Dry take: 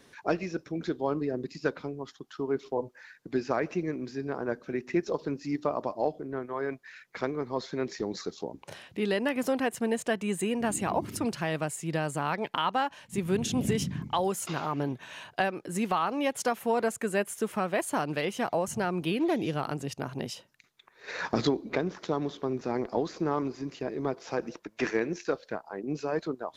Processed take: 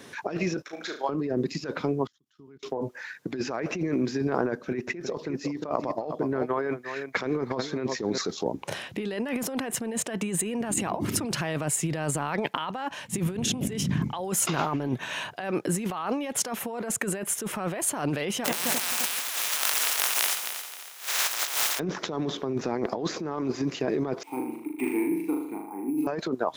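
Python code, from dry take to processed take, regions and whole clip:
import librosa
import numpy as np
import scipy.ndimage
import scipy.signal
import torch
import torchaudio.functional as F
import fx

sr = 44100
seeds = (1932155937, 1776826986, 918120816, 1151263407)

y = fx.chain(x, sr, fx.highpass(hz=780.0, slope=12),
    fx.level_steps(step_db=9),
    fx.room_flutter(wall_m=6.1, rt60_s=0.37), at=(0.62, 1.09))
y = fx.chain(y, sr, fx.tone_stack(knobs='6-0-2'),
    fx.level_steps(step_db=20), at=(2.07, 2.63))
y = fx.chain(y, sr, fx.transient(attack_db=3, sustain_db=-4),
    fx.echo_single(ms=355, db=-15.0), at=(4.52, 8.18))
y = fx.spec_flatten(y, sr, power=0.12, at=(18.44, 21.78), fade=0.02)
y = fx.highpass(y, sr, hz=800.0, slope=12, at=(18.44, 21.78), fade=0.02)
y = fx.echo_heads(y, sr, ms=88, heads='first and third', feedback_pct=54, wet_db=-11.0, at=(18.44, 21.78), fade=0.02)
y = fx.chain(y, sr, fx.vowel_filter(vowel='u'),
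    fx.room_flutter(wall_m=6.7, rt60_s=0.74),
    fx.resample_bad(factor=4, down='filtered', up='hold'), at=(24.23, 26.07))
y = scipy.signal.sosfilt(scipy.signal.butter(2, 87.0, 'highpass', fs=sr, output='sos'), y)
y = fx.peak_eq(y, sr, hz=4500.0, db=-3.0, octaves=0.22)
y = fx.over_compress(y, sr, threshold_db=-35.0, ratio=-1.0)
y = F.gain(torch.from_numpy(y), 6.5).numpy()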